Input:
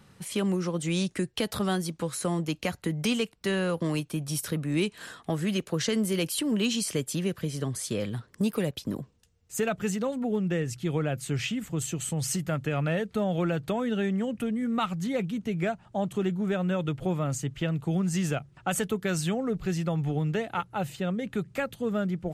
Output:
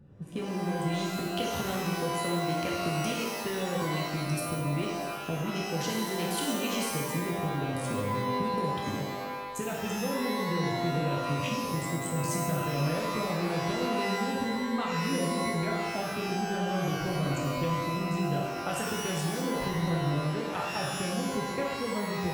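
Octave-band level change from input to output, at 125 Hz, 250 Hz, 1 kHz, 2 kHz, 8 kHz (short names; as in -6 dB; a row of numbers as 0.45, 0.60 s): -1.5, -3.0, +5.5, +1.5, -2.5 dB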